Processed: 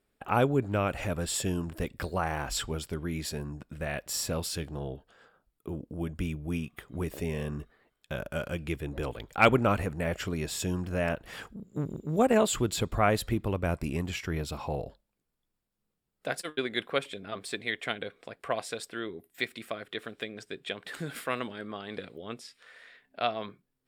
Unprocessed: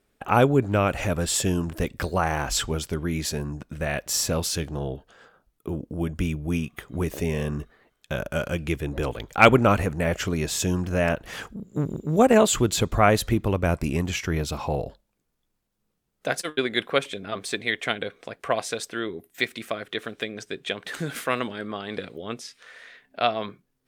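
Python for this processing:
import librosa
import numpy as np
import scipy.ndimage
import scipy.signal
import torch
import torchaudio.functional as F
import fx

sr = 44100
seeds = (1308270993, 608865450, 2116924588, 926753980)

y = fx.notch(x, sr, hz=6200.0, q=6.4)
y = y * 10.0 ** (-6.5 / 20.0)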